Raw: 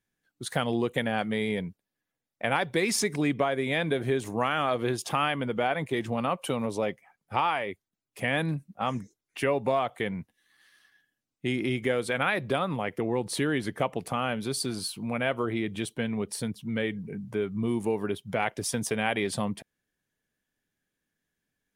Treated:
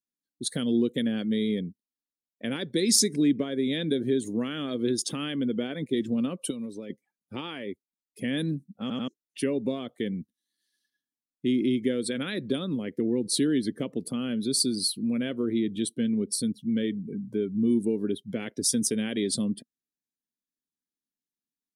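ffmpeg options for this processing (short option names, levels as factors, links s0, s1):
-filter_complex "[0:a]asettb=1/sr,asplit=3[s0][s1][s2];[s0]atrim=end=6.504[s3];[s1]atrim=start=6.5:end=6.9,asetpts=PTS-STARTPTS,afade=t=in:d=0.004:c=qsin,afade=t=out:st=0.396:d=0.004:c=qsin,acrossover=split=990|2900[s4][s5][s6];[s4]acompressor=threshold=0.0141:ratio=4[s7];[s5]acompressor=threshold=0.00708:ratio=4[s8];[s6]acompressor=threshold=0.00282:ratio=4[s9];[s7][s8][s9]amix=inputs=3:normalize=0[s10];[s2]atrim=start=6.896[s11];[s3][s10]acrossfade=d=0.004:c1=hsin:c2=qsin[s12];[s12][s11]acrossfade=d=0.004:c1=qsin:c2=hsin,asplit=4[s13][s14][s15][s16];[s13]atrim=end=8.902[s17];[s14]atrim=start=8.808:end=8.902[s18];[s15]atrim=start=8.808:end=8.902[s19];[s16]atrim=start=9.078[s20];[s17][s18]acrossfade=d=0.004:c1=hsin:c2=hsin[s21];[s21][s19]acrossfade=d=0.004:c1=hsin:c2=hsin[s22];[s22][s20]acrossfade=d=0.004:c1=hsin:c2=hsin,afftdn=nr=18:nf=-44,firequalizer=gain_entry='entry(110,0);entry(240,14);entry(520,2);entry(760,-14);entry(1700,-2);entry(2400,-3);entry(3900,14)':delay=0.05:min_phase=1,volume=0.473"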